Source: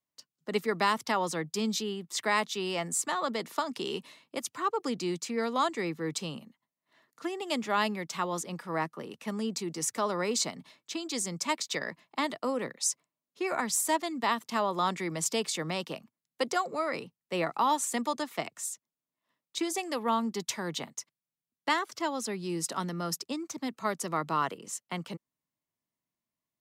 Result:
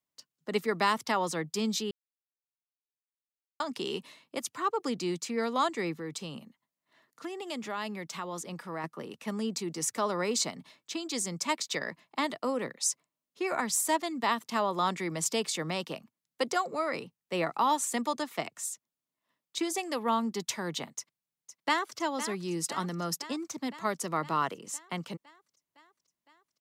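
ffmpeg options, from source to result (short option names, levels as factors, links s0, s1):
-filter_complex "[0:a]asettb=1/sr,asplit=3[s0][s1][s2];[s0]atrim=end=5.944[s3];[s1]atrim=start=5.94:end=8.84,asetpts=PTS-STARTPTS,afade=t=in:d=0.004:c=qsin,afade=t=out:st=2.896:d=0.004:c=qsin,acompressor=threshold=0.0141:ratio=2:attack=3.2:release=140:knee=1:detection=peak[s4];[s2]atrim=start=8.836[s5];[s3][s4]acrossfade=d=0.004:c1=hsin:c2=qsin[s6];[s6][s5]acrossfade=d=0.004:c1=qsin:c2=hsin,asplit=2[s7][s8];[s8]afade=t=in:st=20.97:d=0.01,afade=t=out:st=21.98:d=0.01,aecho=0:1:510|1020|1530|2040|2550|3060|3570|4080|4590|5100:0.266073|0.186251|0.130376|0.0912629|0.063884|0.0447188|0.0313032|0.0219122|0.0153386|0.010737[s9];[s7][s9]amix=inputs=2:normalize=0,asplit=3[s10][s11][s12];[s10]atrim=end=1.91,asetpts=PTS-STARTPTS,afade=t=out:st=1.906:d=0.004:c=hsin[s13];[s11]atrim=start=1.91:end=3.6,asetpts=PTS-STARTPTS,volume=0[s14];[s12]atrim=start=3.6,asetpts=PTS-STARTPTS,afade=t=in:d=0.004:c=hsin[s15];[s13][s14][s15]concat=n=3:v=0:a=1"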